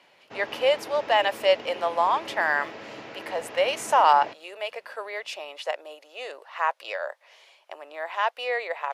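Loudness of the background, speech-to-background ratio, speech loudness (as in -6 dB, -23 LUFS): -40.0 LUFS, 14.5 dB, -25.5 LUFS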